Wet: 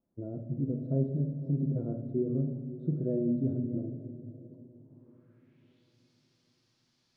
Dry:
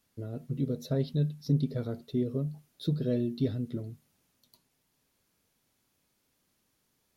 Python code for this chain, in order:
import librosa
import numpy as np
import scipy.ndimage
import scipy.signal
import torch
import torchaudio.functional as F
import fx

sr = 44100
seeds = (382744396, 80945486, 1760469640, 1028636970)

p1 = fx.peak_eq(x, sr, hz=460.0, db=-13.5, octaves=0.36)
p2 = fx.hpss(p1, sr, part='percussive', gain_db=-7)
p3 = fx.low_shelf(p2, sr, hz=190.0, db=-6.0)
p4 = fx.level_steps(p3, sr, step_db=23)
p5 = p3 + F.gain(torch.from_numpy(p4), -1.5).numpy()
p6 = fx.filter_sweep_lowpass(p5, sr, from_hz=480.0, to_hz=4900.0, start_s=4.65, end_s=5.98, q=2.4)
p7 = fx.echo_diffused(p6, sr, ms=571, feedback_pct=42, wet_db=-15.0)
y = fx.room_shoebox(p7, sr, seeds[0], volume_m3=890.0, walls='mixed', distance_m=0.76)